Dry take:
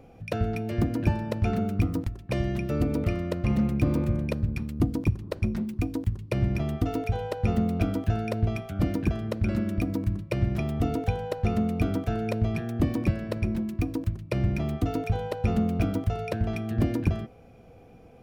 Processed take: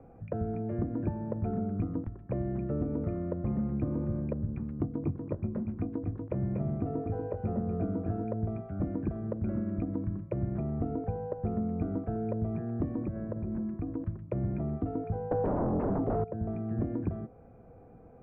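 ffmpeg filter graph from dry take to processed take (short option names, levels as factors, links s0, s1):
-filter_complex "[0:a]asettb=1/sr,asplit=3[s0][s1][s2];[s0]atrim=end=4.714[s3];[s1]atrim=start=4.71:end=8.24,asetpts=PTS-STARTPTS,afade=t=in:d=0.004:c=qsin,afade=t=out:st=3.526:d=0.004:c=qsin,highpass=86,asplit=2[s4][s5];[s5]adelay=21,volume=0.355[s6];[s4][s6]amix=inputs=2:normalize=0,atrim=end_sample=155673,aecho=1:1:239:0.447,atrim=end_sample=155673[s7];[s2]atrim=start=8.236[s8];[s3][s7]acrossfade=d=0.004:c1=hsin:c2=qsin[s9];[s9][s8]acrossfade=d=0.004:c1=qsin:c2=hsin,asettb=1/sr,asplit=3[s10][s11][s12];[s10]atrim=end=13.064[s13];[s11]atrim=start=13.06:end=14.01,asetpts=PTS-STARTPTS,afade=t=in:d=0.004:c=qsin,afade=t=out:st=0.946:d=0.004:c=qsin,lowpass=2100,acompressor=threshold=0.0447:ratio=3:attack=3.2:release=140:knee=1:detection=peak[s14];[s12]atrim=start=14.006[s15];[s13][s14]acrossfade=d=0.004:c1=hsin:c2=qsin[s16];[s16][s15]acrossfade=d=0.004:c1=qsin:c2=hsin,asettb=1/sr,asplit=3[s17][s18][s19];[s17]atrim=end=15.314[s20];[s18]atrim=start=15.31:end=16.24,asetpts=PTS-STARTPTS,afade=t=in:d=0.004:c=qsin,afade=t=out:st=0.926:d=0.004:c=qsin,highshelf=f=4300:g=10,aeval=exprs='0.224*sin(PI/2*5.62*val(0)/0.224)':c=same[s21];[s19]atrim=start=16.236[s22];[s20][s21]acrossfade=d=0.004:c1=hsin:c2=qsin[s23];[s23][s22]acrossfade=d=0.004:c1=qsin:c2=hsin,lowpass=f=1600:w=0.5412,lowpass=f=1600:w=1.3066,acrossover=split=110|790[s24][s25][s26];[s24]acompressor=threshold=0.0126:ratio=4[s27];[s25]acompressor=threshold=0.0447:ratio=4[s28];[s26]acompressor=threshold=0.00178:ratio=4[s29];[s27][s28][s29]amix=inputs=3:normalize=0,volume=0.794"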